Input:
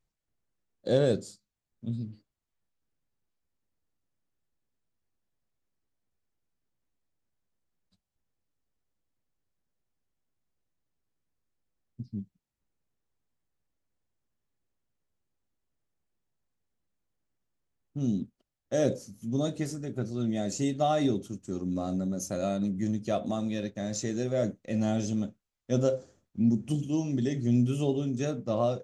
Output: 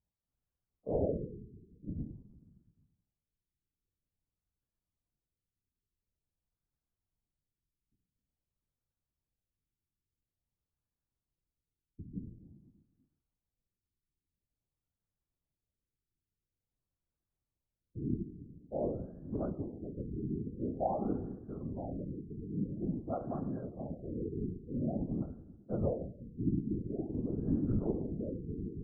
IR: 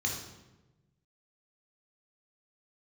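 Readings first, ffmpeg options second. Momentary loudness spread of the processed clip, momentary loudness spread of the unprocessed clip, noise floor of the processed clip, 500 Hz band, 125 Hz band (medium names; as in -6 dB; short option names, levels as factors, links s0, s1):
12 LU, 13 LU, under -85 dBFS, -8.5 dB, -6.5 dB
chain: -filter_complex "[0:a]asplit=2[s0][s1];[1:a]atrim=start_sample=2205,adelay=23[s2];[s1][s2]afir=irnorm=-1:irlink=0,volume=0.237[s3];[s0][s3]amix=inputs=2:normalize=0,afftfilt=real='hypot(re,im)*cos(2*PI*random(0))':imag='hypot(re,im)*sin(2*PI*random(1))':win_size=512:overlap=0.75,afftfilt=real='re*lt(b*sr/1024,430*pow(1800/430,0.5+0.5*sin(2*PI*0.48*pts/sr)))':imag='im*lt(b*sr/1024,430*pow(1800/430,0.5+0.5*sin(2*PI*0.48*pts/sr)))':win_size=1024:overlap=0.75,volume=0.75"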